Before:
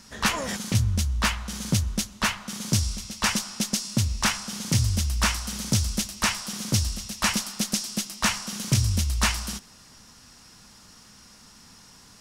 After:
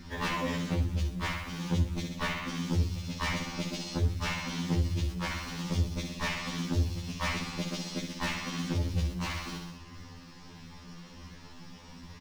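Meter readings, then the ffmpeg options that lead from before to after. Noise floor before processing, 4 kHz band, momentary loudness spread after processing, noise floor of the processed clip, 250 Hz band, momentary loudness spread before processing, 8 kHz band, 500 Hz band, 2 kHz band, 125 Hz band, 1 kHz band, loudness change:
−52 dBFS, −9.5 dB, 18 LU, −50 dBFS, −3.5 dB, 7 LU, −16.5 dB, −1.0 dB, −6.5 dB, −5.0 dB, −5.5 dB, −7.0 dB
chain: -filter_complex "[0:a]lowpass=3100,equalizer=frequency=1400:width_type=o:width=0.36:gain=-8,bandreject=frequency=50:width_type=h:width=6,bandreject=frequency=100:width_type=h:width=6,bandreject=frequency=150:width_type=h:width=6,bandreject=frequency=200:width_type=h:width=6,flanger=delay=0.5:depth=5.5:regen=-23:speed=1.5:shape=sinusoidal,lowshelf=frequency=290:gain=6,asplit=2[link_01][link_02];[link_02]aecho=0:1:64|128|192|256|320|384:0.447|0.223|0.112|0.0558|0.0279|0.014[link_03];[link_01][link_03]amix=inputs=2:normalize=0,asoftclip=type=hard:threshold=-25dB,asplit=2[link_04][link_05];[link_05]acrusher=bits=4:mode=log:mix=0:aa=0.000001,volume=-3dB[link_06];[link_04][link_06]amix=inputs=2:normalize=0,bandreject=frequency=700:width=12,acompressor=threshold=-30dB:ratio=5,afftfilt=real='re*2*eq(mod(b,4),0)':imag='im*2*eq(mod(b,4),0)':win_size=2048:overlap=0.75,volume=4.5dB"

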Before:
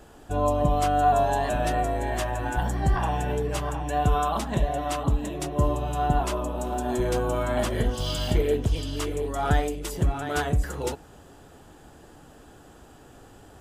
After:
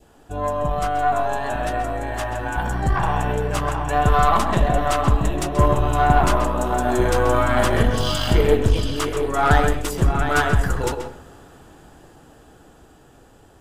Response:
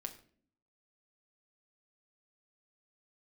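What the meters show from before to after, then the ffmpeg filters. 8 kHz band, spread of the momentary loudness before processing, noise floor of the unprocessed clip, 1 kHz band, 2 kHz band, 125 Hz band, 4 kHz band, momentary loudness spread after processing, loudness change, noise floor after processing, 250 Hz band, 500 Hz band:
+4.5 dB, 6 LU, −50 dBFS, +6.0 dB, +9.5 dB, +5.0 dB, +6.0 dB, 8 LU, +5.5 dB, −50 dBFS, +5.0 dB, +5.0 dB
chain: -filter_complex "[0:a]dynaudnorm=framelen=710:gausssize=9:maxgain=11.5dB,adynamicequalizer=threshold=0.0141:dfrequency=1300:dqfactor=1.4:tfrequency=1300:tqfactor=1.4:attack=5:release=100:ratio=0.375:range=3.5:mode=boostabove:tftype=bell,aeval=exprs='1.06*(cos(1*acos(clip(val(0)/1.06,-1,1)))-cos(1*PI/2))+0.0473*(cos(8*acos(clip(val(0)/1.06,-1,1)))-cos(8*PI/2))':channel_layout=same,asplit=2[link_01][link_02];[1:a]atrim=start_sample=2205,highshelf=frequency=5100:gain=-11,adelay=131[link_03];[link_02][link_03]afir=irnorm=-1:irlink=0,volume=-3.5dB[link_04];[link_01][link_04]amix=inputs=2:normalize=0,volume=-2.5dB"

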